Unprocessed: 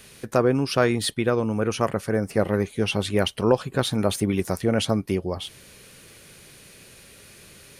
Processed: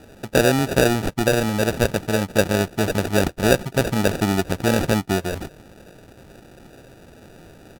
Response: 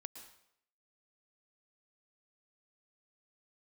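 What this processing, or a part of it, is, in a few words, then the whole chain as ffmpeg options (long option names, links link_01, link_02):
crushed at another speed: -af "asetrate=55125,aresample=44100,acrusher=samples=33:mix=1:aa=0.000001,asetrate=35280,aresample=44100,volume=3dB"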